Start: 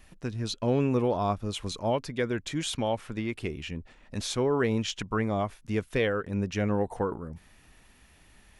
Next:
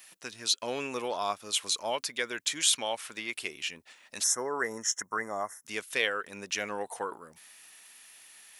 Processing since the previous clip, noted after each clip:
high-pass filter 480 Hz 6 dB per octave
gain on a spectral selection 0:04.23–0:05.66, 2,100–5,200 Hz −27 dB
spectral tilt +4 dB per octave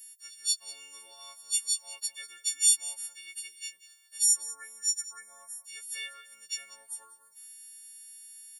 every partial snapped to a pitch grid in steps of 4 semitones
first-order pre-emphasis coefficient 0.97
single-tap delay 191 ms −16 dB
level −8.5 dB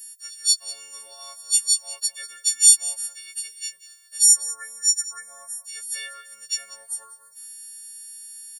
comb filter 1.6 ms, depth 52%
level +6.5 dB

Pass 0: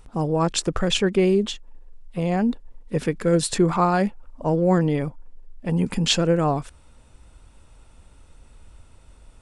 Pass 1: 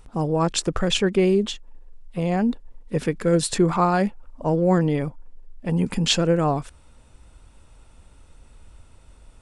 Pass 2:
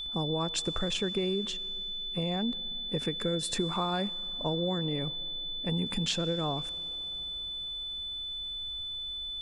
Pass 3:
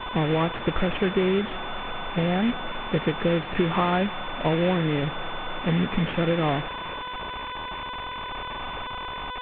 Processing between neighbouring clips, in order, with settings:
no processing that can be heard
downward compressor, threshold −23 dBFS, peak gain reduction 9.5 dB; steady tone 3,500 Hz −30 dBFS; comb and all-pass reverb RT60 4.4 s, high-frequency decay 0.9×, pre-delay 40 ms, DRR 20 dB; level −5 dB
variable-slope delta modulation 16 kbit/s; level +9 dB

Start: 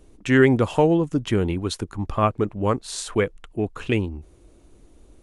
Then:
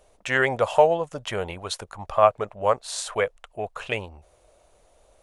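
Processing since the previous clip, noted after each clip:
low shelf with overshoot 430 Hz −11.5 dB, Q 3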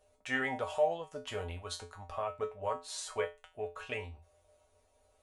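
brickwall limiter −12 dBFS, peak gain reduction 8.5 dB
tuned comb filter 86 Hz, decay 0.26 s, harmonics odd, mix 90%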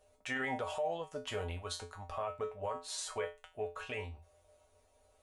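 brickwall limiter −28.5 dBFS, peak gain reduction 10 dB
level +1 dB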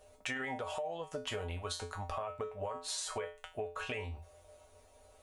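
downward compressor 10 to 1, threshold −43 dBFS, peak gain reduction 12 dB
level +7.5 dB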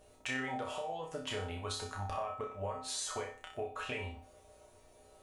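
hum with harmonics 60 Hz, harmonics 7, −69 dBFS −1 dB per octave
flutter between parallel walls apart 5.3 metres, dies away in 0.43 s
level −1.5 dB

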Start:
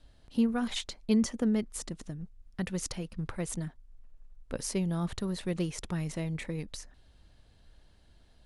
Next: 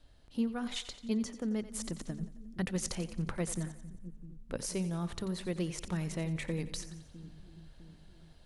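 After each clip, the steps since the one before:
mains-hum notches 50/100/150/200/250 Hz
speech leveller within 5 dB 0.5 s
echo with a time of its own for lows and highs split 330 Hz, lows 655 ms, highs 89 ms, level −13.5 dB
level −3 dB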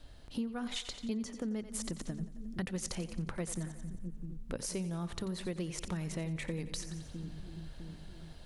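downward compressor 3 to 1, threshold −45 dBFS, peak gain reduction 13 dB
level +7.5 dB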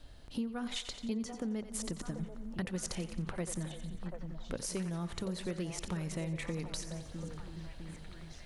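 echo through a band-pass that steps 737 ms, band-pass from 670 Hz, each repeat 0.7 octaves, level −4 dB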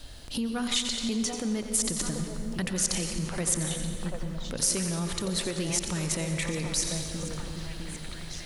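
on a send at −8 dB: convolution reverb RT60 2.4 s, pre-delay 114 ms
on the sum: brickwall limiter −30 dBFS, peak gain reduction 8.5 dB
high-shelf EQ 3,000 Hz +11.5 dB
level +7.5 dB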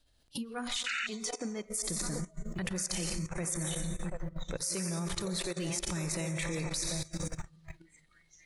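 sound drawn into the spectrogram noise, 0:00.86–0:01.07, 1,300–3,000 Hz −22 dBFS
output level in coarse steps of 17 dB
noise reduction from a noise print of the clip's start 18 dB

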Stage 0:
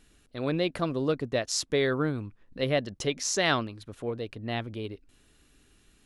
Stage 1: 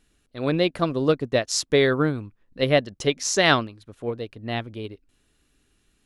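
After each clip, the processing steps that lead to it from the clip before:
expander for the loud parts 1.5 to 1, over −47 dBFS
level +8 dB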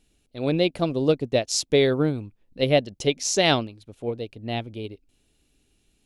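flat-topped bell 1,400 Hz −8.5 dB 1.1 octaves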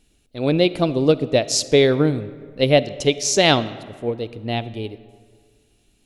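comb and all-pass reverb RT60 1.9 s, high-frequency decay 0.6×, pre-delay 10 ms, DRR 15.5 dB
level +4.5 dB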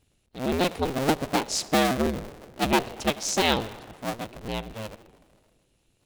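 sub-harmonics by changed cycles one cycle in 2, inverted
level −7.5 dB

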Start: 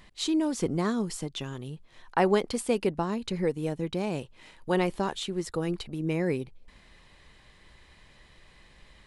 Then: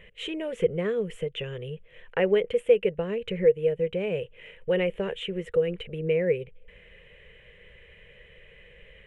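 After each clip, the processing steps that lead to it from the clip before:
drawn EQ curve 190 Hz 0 dB, 280 Hz −17 dB, 480 Hz +15 dB, 770 Hz −10 dB, 1,100 Hz −10 dB, 1,900 Hz +5 dB, 3,000 Hz +6 dB, 4,600 Hz −28 dB, 7,400 Hz −16 dB
in parallel at +1 dB: downward compressor, threshold −30 dBFS, peak gain reduction 18.5 dB
on the sum: level −5 dB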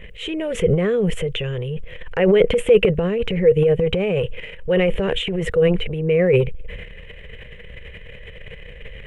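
low-shelf EQ 120 Hz +10.5 dB
transient designer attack −3 dB, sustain +11 dB
level +6.5 dB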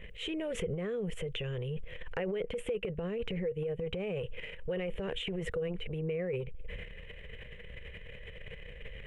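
downward compressor 6 to 1, threshold −24 dBFS, peak gain reduction 14.5 dB
level −8.5 dB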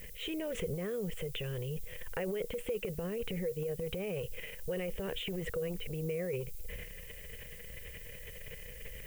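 background noise violet −51 dBFS
level −1.5 dB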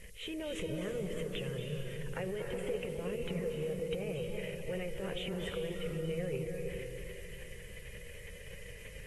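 on a send at −3 dB: convolution reverb RT60 2.4 s, pre-delay 224 ms
on the sum: level −3 dB
AAC 32 kbit/s 32,000 Hz

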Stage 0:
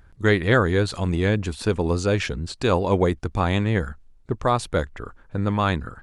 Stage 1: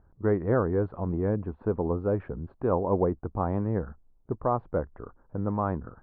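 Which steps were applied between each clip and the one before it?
low-pass filter 1,100 Hz 24 dB per octave
low-shelf EQ 120 Hz −6 dB
level −4 dB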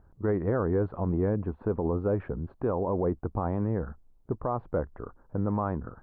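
brickwall limiter −21 dBFS, peak gain reduction 8.5 dB
level +2 dB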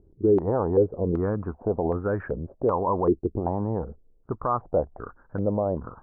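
low-pass on a step sequencer 2.6 Hz 380–1,600 Hz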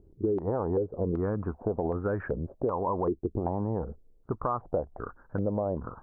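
downward compressor, threshold −25 dBFS, peak gain reduction 10 dB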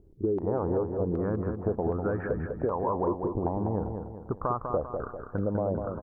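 repeating echo 198 ms, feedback 45%, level −6 dB

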